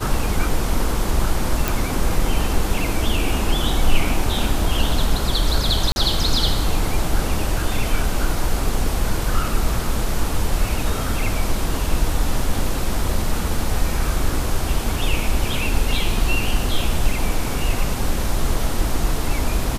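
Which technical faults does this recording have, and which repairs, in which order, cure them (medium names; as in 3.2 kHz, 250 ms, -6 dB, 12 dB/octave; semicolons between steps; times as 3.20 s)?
1.68 s: pop
5.92–5.96 s: dropout 41 ms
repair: de-click; interpolate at 5.92 s, 41 ms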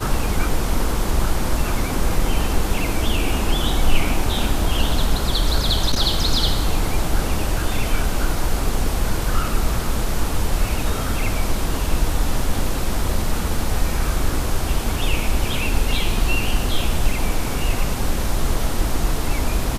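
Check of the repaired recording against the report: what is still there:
nothing left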